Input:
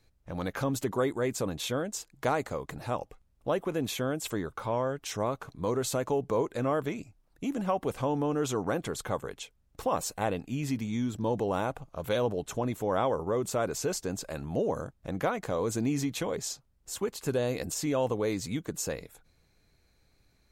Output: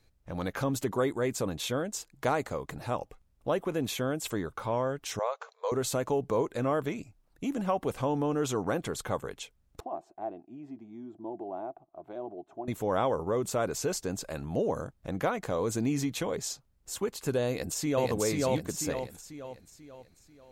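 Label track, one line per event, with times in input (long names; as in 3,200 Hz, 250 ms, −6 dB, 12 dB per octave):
5.190000	5.720000	linear-phase brick-wall band-pass 430–7,600 Hz
9.800000	12.680000	pair of resonant band-passes 490 Hz, apart 0.94 octaves
17.480000	18.090000	delay throw 490 ms, feedback 45%, level −0.5 dB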